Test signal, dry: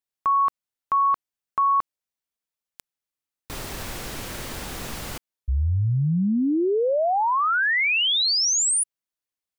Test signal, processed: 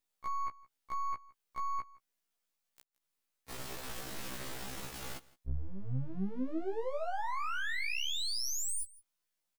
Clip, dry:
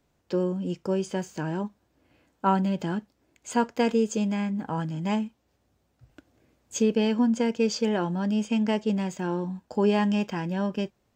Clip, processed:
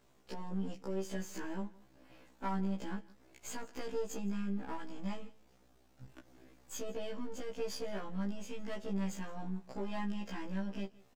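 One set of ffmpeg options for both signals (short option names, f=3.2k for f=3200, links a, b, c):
-filter_complex "[0:a]aeval=exprs='if(lt(val(0),0),0.251*val(0),val(0))':c=same,equalizer=f=72:t=o:w=1.2:g=-6.5,acompressor=threshold=-43dB:ratio=4:attack=0.11:release=137:knee=6:detection=rms,asplit=2[a][b];[b]aecho=0:1:165:0.0794[c];[a][c]amix=inputs=2:normalize=0,afftfilt=real='re*1.73*eq(mod(b,3),0)':imag='im*1.73*eq(mod(b,3),0)':win_size=2048:overlap=0.75,volume=9dB"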